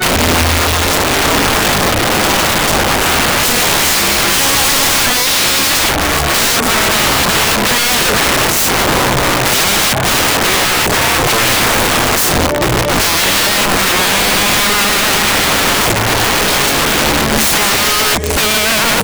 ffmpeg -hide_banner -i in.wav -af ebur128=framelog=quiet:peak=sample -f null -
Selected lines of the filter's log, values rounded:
Integrated loudness:
  I:         -10.2 LUFS
  Threshold: -20.2 LUFS
Loudness range:
  LRA:         0.9 LU
  Threshold: -30.2 LUFS
  LRA low:   -10.5 LUFS
  LRA high:   -9.6 LUFS
Sample peak:
  Peak:       -7.2 dBFS